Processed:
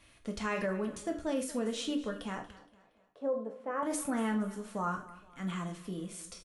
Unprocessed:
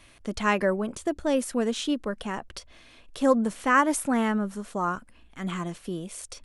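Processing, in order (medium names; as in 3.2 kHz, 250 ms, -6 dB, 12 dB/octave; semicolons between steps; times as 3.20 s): 2.53–3.83 s: band-pass filter 570 Hz, Q 2; on a send at -2.5 dB: reverberation, pre-delay 3 ms; on the sum: peak limiter -16 dBFS, peak gain reduction 6.5 dB; feedback delay 234 ms, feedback 40%, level -18 dB; trim -8 dB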